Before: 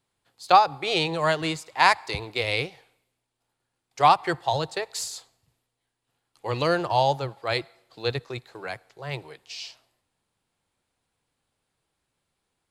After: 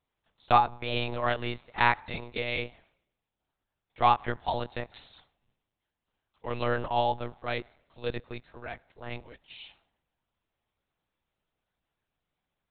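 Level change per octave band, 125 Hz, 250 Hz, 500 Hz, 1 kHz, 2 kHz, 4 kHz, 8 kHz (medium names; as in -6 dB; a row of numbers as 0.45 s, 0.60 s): -4.5 dB, -5.0 dB, -6.0 dB, -5.0 dB, -5.0 dB, -8.5 dB, under -40 dB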